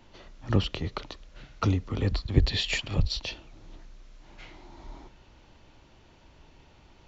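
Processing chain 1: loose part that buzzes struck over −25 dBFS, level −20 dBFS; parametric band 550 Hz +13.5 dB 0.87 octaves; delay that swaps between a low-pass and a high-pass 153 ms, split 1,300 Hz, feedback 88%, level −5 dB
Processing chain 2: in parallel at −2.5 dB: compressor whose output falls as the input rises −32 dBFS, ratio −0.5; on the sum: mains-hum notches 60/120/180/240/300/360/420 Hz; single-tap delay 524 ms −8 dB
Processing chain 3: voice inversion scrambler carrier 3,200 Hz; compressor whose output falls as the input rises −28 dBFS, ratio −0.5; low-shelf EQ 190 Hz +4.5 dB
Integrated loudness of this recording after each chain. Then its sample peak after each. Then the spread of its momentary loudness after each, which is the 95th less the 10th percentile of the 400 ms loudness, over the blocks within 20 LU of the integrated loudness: −26.5, −27.0, −30.0 LKFS; −4.0, −7.0, −13.0 dBFS; 20, 19, 21 LU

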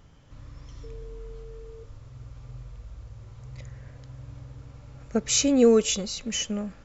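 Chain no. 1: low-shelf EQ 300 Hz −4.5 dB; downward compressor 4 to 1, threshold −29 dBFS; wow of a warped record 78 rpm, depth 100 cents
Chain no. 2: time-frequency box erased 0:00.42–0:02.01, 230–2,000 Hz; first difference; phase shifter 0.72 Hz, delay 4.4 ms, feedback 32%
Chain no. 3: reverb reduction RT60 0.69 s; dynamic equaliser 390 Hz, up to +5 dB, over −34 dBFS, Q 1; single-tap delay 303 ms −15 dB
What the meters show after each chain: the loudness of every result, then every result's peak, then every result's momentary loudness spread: −34.0, −29.5, −21.5 LKFS; −18.5, −11.0, −5.0 dBFS; 19, 11, 13 LU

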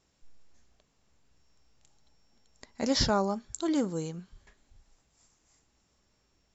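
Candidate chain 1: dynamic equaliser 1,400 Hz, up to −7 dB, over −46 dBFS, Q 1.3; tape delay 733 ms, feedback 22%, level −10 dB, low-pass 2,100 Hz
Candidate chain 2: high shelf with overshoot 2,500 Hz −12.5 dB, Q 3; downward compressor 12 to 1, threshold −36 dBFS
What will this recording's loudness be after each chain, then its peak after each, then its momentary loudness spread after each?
−31.5, −42.0 LKFS; −13.0, −26.5 dBFS; 16, 17 LU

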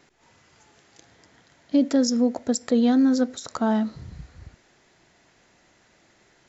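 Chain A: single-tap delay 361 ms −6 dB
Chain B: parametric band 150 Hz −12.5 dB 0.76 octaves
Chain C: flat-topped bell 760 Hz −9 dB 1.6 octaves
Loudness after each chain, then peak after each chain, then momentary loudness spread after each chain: −22.0, −24.5, −23.0 LKFS; −9.0, −11.5, −12.0 dBFS; 11, 8, 11 LU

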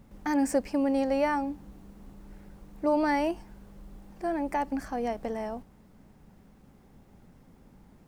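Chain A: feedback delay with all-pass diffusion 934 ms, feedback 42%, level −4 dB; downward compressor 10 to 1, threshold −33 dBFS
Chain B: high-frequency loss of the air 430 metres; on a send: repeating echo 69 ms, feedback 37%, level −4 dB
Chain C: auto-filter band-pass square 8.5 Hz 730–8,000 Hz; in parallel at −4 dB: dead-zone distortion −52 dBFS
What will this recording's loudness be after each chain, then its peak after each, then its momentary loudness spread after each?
−38.0, −29.0, −33.5 LKFS; −23.0, −15.0, −15.5 dBFS; 7, 14, 12 LU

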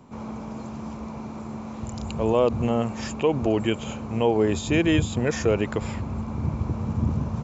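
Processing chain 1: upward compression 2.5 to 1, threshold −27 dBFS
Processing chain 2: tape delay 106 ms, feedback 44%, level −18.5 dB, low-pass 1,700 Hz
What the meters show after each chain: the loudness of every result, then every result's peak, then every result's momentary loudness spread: −26.0, −25.5 LKFS; −8.5, −8.5 dBFS; 12, 14 LU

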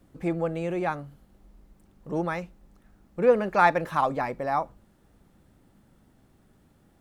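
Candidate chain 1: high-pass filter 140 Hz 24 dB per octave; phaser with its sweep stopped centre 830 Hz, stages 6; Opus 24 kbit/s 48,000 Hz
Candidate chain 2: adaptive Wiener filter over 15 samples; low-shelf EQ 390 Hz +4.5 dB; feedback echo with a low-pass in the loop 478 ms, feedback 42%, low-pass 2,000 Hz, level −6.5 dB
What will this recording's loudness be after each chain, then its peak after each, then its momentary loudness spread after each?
−29.0, −25.5 LKFS; −10.0, −6.5 dBFS; 15, 21 LU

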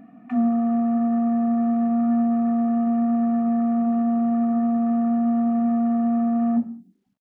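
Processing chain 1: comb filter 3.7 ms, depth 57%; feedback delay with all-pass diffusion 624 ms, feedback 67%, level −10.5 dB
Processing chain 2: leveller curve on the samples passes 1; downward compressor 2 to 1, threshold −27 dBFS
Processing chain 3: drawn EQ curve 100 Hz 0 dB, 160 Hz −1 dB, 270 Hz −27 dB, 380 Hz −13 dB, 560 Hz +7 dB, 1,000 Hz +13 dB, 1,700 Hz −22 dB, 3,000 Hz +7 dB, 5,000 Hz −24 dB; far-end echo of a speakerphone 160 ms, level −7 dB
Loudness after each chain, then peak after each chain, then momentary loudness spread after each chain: −19.5, −24.5, −23.0 LKFS; −10.5, −19.5, −16.0 dBFS; 3, 1, 2 LU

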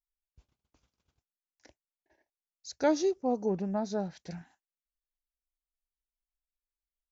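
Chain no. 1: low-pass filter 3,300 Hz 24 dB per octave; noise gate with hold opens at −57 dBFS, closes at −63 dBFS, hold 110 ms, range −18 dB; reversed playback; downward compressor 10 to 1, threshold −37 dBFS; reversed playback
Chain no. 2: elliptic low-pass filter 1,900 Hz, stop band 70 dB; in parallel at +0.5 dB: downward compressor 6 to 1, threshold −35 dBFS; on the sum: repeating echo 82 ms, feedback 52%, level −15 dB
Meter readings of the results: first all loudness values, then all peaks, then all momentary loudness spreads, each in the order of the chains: −42.5, −29.0 LKFS; −30.5, −14.5 dBFS; 6, 14 LU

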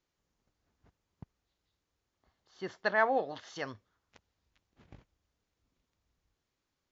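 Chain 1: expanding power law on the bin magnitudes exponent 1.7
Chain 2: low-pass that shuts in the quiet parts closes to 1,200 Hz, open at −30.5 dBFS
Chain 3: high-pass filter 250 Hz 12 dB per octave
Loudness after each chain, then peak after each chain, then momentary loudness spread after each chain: −33.5, −33.0, −33.5 LKFS; −15.0, −13.0, −14.0 dBFS; 16, 16, 16 LU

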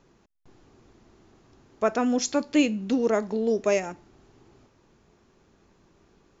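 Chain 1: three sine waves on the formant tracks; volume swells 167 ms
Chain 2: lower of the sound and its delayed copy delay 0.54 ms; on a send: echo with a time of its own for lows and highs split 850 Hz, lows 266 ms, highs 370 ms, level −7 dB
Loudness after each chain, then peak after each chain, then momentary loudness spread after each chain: −28.5, −26.5 LKFS; −12.5, −10.0 dBFS; 11, 15 LU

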